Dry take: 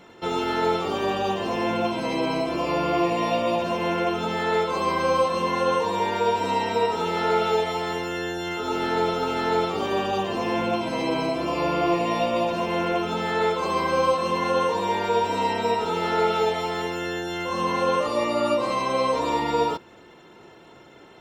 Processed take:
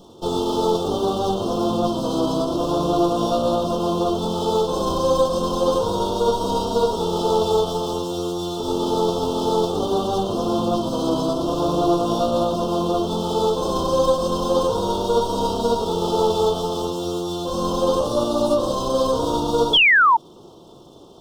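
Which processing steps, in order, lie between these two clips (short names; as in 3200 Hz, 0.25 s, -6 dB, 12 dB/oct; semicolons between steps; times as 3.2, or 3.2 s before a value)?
minimum comb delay 0.34 ms; Chebyshev band-stop 1200–3400 Hz, order 3; painted sound fall, 19.73–20.17, 860–3500 Hz -19 dBFS; gain +5.5 dB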